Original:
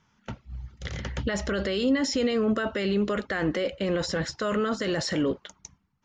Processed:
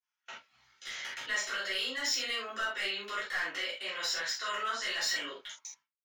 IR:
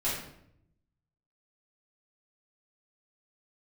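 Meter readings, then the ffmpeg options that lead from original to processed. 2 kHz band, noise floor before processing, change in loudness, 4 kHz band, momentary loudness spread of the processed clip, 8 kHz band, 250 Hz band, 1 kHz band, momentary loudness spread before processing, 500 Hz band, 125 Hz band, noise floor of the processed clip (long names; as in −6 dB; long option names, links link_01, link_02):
+0.5 dB, −69 dBFS, −6.0 dB, +1.5 dB, 16 LU, +1.0 dB, −26.5 dB, −3.0 dB, 15 LU, −17.5 dB, below −30 dB, below −85 dBFS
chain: -filter_complex "[0:a]agate=range=-33dB:threshold=-54dB:ratio=3:detection=peak,highpass=1500,asoftclip=type=hard:threshold=-28.5dB[link_01];[1:a]atrim=start_sample=2205,atrim=end_sample=3969[link_02];[link_01][link_02]afir=irnorm=-1:irlink=0,volume=-3.5dB"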